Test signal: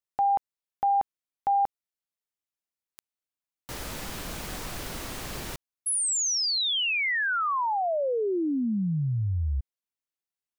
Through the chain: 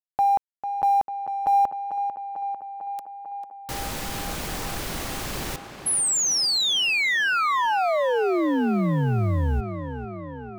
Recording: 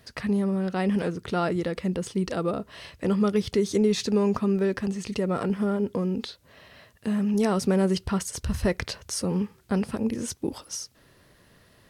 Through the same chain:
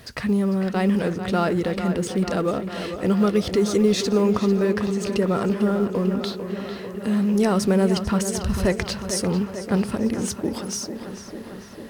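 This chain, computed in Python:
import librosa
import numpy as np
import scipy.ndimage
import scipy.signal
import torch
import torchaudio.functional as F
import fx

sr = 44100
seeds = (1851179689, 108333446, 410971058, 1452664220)

y = fx.law_mismatch(x, sr, coded='mu')
y = fx.echo_tape(y, sr, ms=447, feedback_pct=78, wet_db=-8.5, lp_hz=3300.0, drive_db=6.0, wow_cents=14)
y = F.gain(torch.from_numpy(y), 3.0).numpy()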